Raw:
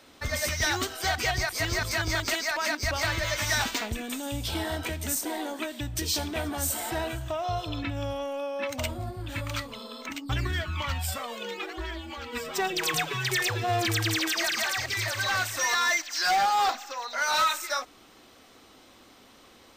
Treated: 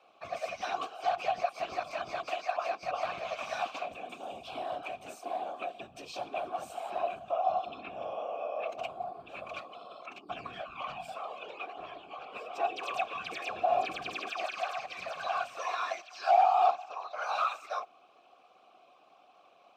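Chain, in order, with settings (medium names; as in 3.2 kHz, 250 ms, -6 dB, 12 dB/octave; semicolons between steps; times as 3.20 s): whisper effect; vowel filter a; trim +5 dB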